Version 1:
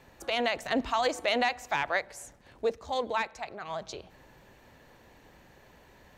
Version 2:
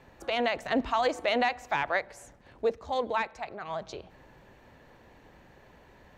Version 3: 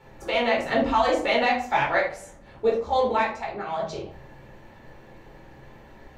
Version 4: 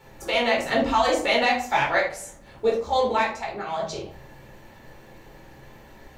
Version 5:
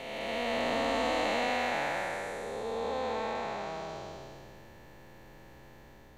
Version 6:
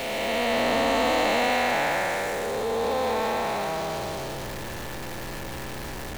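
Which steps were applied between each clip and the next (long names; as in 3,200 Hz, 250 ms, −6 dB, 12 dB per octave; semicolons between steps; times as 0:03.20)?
high-shelf EQ 4,300 Hz −10 dB; level +1.5 dB
rectangular room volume 340 cubic metres, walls furnished, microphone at 4.3 metres; level −1.5 dB
high-shelf EQ 4,900 Hz +12 dB
spectrum smeared in time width 704 ms; level −4 dB
converter with a step at zero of −35.5 dBFS; level +5.5 dB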